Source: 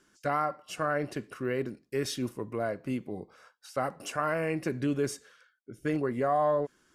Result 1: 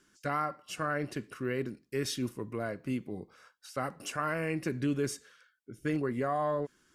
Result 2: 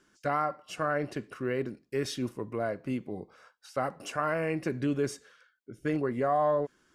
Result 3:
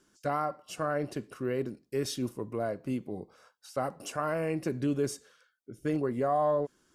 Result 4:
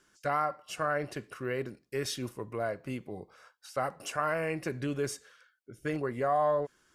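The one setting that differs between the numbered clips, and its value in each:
peaking EQ, frequency: 670 Hz, 14 kHz, 1.9 kHz, 250 Hz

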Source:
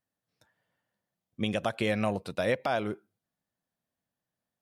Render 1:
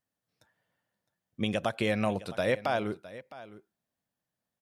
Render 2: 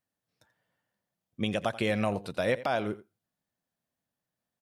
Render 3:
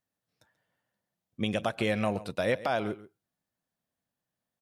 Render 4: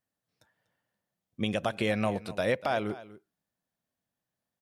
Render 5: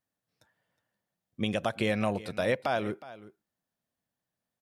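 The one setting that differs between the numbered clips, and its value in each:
delay, time: 661 ms, 86 ms, 135 ms, 243 ms, 365 ms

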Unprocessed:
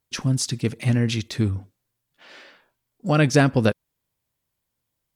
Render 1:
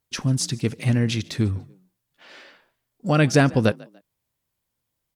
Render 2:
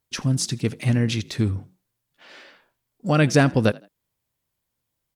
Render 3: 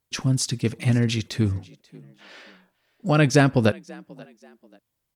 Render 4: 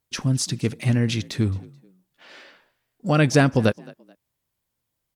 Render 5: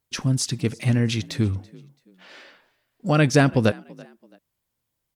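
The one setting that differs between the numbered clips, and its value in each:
frequency-shifting echo, time: 145 ms, 81 ms, 535 ms, 216 ms, 333 ms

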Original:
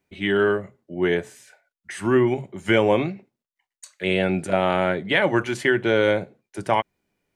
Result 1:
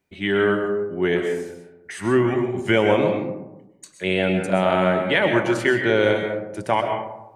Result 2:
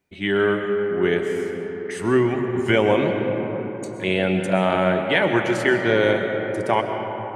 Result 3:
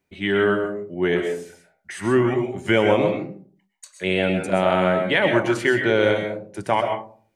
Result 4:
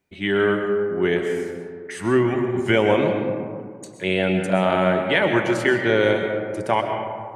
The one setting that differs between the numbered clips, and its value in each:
algorithmic reverb, RT60: 0.97 s, 4.6 s, 0.45 s, 2.1 s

